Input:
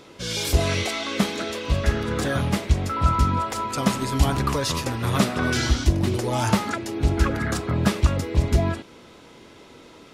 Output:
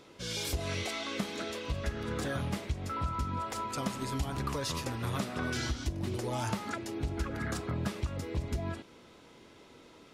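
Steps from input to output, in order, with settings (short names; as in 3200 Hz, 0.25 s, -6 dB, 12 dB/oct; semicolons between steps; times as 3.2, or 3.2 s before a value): compressor 6:1, threshold -21 dBFS, peak gain reduction 9.5 dB; gain -8.5 dB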